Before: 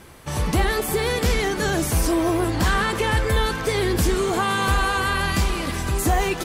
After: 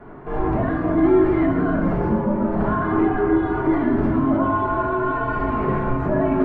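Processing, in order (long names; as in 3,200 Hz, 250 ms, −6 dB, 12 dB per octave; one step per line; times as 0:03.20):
low-pass filter 1,400 Hz 24 dB per octave
spectral tilt +3.5 dB per octave
brickwall limiter −25.5 dBFS, peak gain reduction 11.5 dB
hollow resonant body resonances 250/480 Hz, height 10 dB, ringing for 25 ms
frequency shifter −120 Hz
echo with a time of its own for lows and highs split 470 Hz, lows 449 ms, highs 129 ms, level −15 dB
convolution reverb RT60 0.95 s, pre-delay 3 ms, DRR −2.5 dB
level +3 dB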